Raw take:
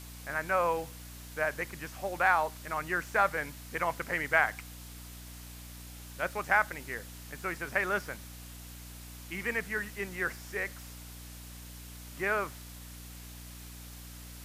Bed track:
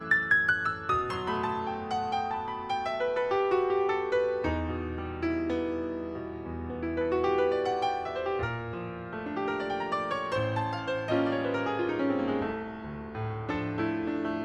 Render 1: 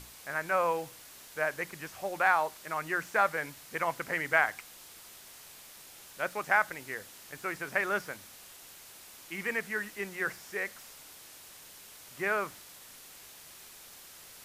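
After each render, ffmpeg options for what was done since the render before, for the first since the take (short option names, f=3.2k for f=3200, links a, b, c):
-af "bandreject=f=60:t=h:w=6,bandreject=f=120:t=h:w=6,bandreject=f=180:t=h:w=6,bandreject=f=240:t=h:w=6,bandreject=f=300:t=h:w=6"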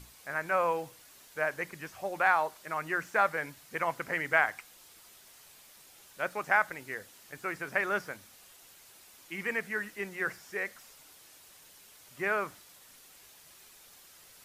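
-af "afftdn=nr=6:nf=-52"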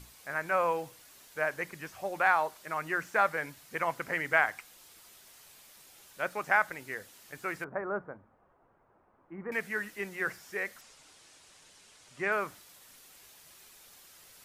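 -filter_complex "[0:a]asettb=1/sr,asplit=3[a][b][c];[a]atrim=end=7.644[d];[b]atrim=start=7.64:end=9.52,asetpts=PTS-STARTPTS,afade=t=in:d=0.004:c=qsin,afade=t=out:st=1.876:d=0.004:c=qsin,lowpass=f=1.2k:w=0.5412,lowpass=f=1.2k:w=1.3066[e];[c]atrim=start=9.516[f];[d][e]acrossfade=d=0.004:c1=hsin:c2=qsin[g];[g][f]acrossfade=d=0.004:c1=qsin:c2=hsin,asettb=1/sr,asplit=3[h][i][j];[h]atrim=end=10.814[k];[i]atrim=start=10.81:end=12.32,asetpts=PTS-STARTPTS,afade=t=in:d=0.004:c=qsin,afade=t=out:st=1.506:d=0.004:c=qsin,lowpass=f=9k:w=0.5412,lowpass=f=9k:w=1.3066[l];[j]atrim=start=12.316[m];[k][l]acrossfade=d=0.004:c1=hsin:c2=qsin[n];[n][m]acrossfade=d=0.004:c1=qsin:c2=hsin"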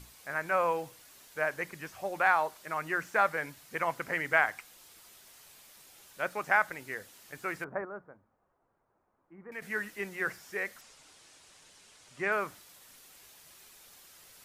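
-filter_complex "[0:a]asplit=3[a][b][c];[a]atrim=end=7.852[d];[b]atrim=start=7.848:end=9.622,asetpts=PTS-STARTPTS,volume=-9dB[e];[c]atrim=start=9.618[f];[d][e]acrossfade=d=0.004:c1=hsin:c2=hsin[g];[g][f]acrossfade=d=0.004:c1=hsin:c2=hsin"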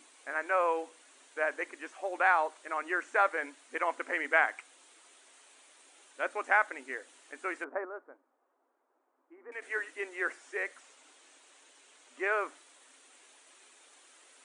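-af "afftfilt=real='re*between(b*sr/4096,240,9900)':imag='im*between(b*sr/4096,240,9900)':win_size=4096:overlap=0.75,equalizer=f=5k:t=o:w=0.53:g=-9"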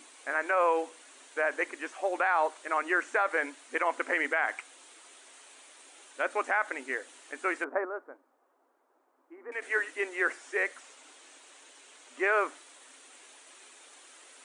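-af "alimiter=limit=-21.5dB:level=0:latency=1:release=61,acontrast=38"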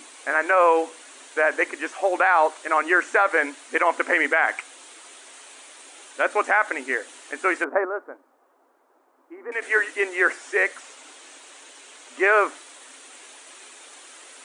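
-af "volume=8.5dB"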